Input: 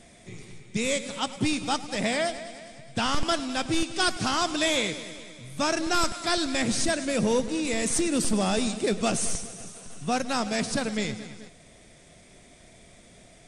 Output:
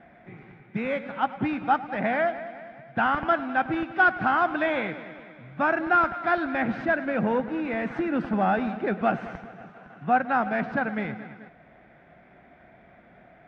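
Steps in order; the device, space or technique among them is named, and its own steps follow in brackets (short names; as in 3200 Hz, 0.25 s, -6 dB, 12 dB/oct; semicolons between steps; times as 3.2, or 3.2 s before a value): bass cabinet (speaker cabinet 71–2200 Hz, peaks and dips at 100 Hz -9 dB, 440 Hz -4 dB, 780 Hz +9 dB, 1500 Hz +10 dB)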